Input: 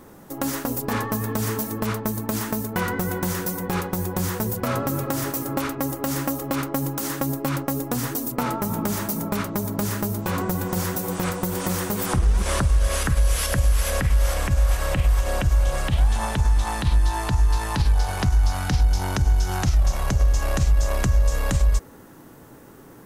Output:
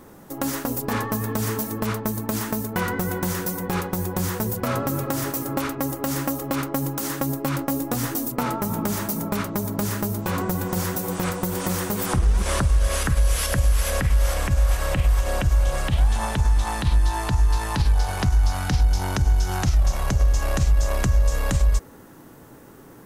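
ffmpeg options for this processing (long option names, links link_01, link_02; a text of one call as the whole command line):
ffmpeg -i in.wav -filter_complex "[0:a]asettb=1/sr,asplit=3[link_01][link_02][link_03];[link_01]atrim=end=7.574[link_04];[link_02]atrim=start=7.57:end=8.27,asetpts=PTS-STARTPTS,afade=type=in:duration=0.004:curve=qsin,afade=type=out:start_time=0.696:duration=0.004:curve=qsin,asplit=2[link_05][link_06];[link_06]adelay=18,volume=-7.5dB[link_07];[link_05][link_07]amix=inputs=2:normalize=0,atrim=end_sample=30870[link_08];[link_03]atrim=start=8.266[link_09];[link_04][link_08]acrossfade=duration=0.004:curve1=hsin:curve2=qsin[link_10];[link_10][link_09]acrossfade=duration=0.004:curve1=qsin:curve2=hsin" out.wav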